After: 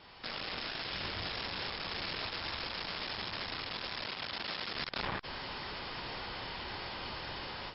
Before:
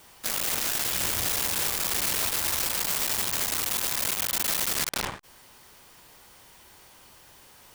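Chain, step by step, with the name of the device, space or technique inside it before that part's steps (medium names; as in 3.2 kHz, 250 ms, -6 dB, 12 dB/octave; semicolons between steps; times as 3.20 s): 4.03–4.74 s: high-pass 110 Hz 6 dB/octave; low-bitrate web radio (level rider gain up to 14.5 dB; peak limiter -26 dBFS, peak gain reduction 21 dB; MP3 40 kbps 12 kHz)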